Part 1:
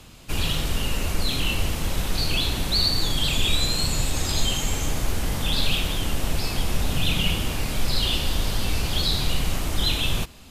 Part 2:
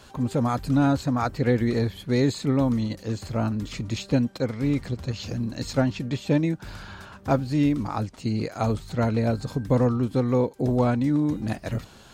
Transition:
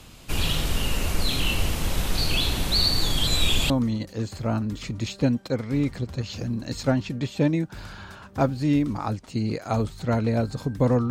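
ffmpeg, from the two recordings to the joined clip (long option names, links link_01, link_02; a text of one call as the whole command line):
ffmpeg -i cue0.wav -i cue1.wav -filter_complex "[0:a]apad=whole_dur=11.1,atrim=end=11.1,asplit=2[link_01][link_02];[link_01]atrim=end=3.272[link_03];[link_02]atrim=start=3.268:end=3.702,asetpts=PTS-STARTPTS,areverse[link_04];[1:a]atrim=start=2.598:end=10[link_05];[link_03][link_04]acrossfade=duration=0.004:curve1=hsin:curve2=hsin[link_06];[link_06][link_05]acrossfade=duration=0.004:curve1=hsin:curve2=hsin" out.wav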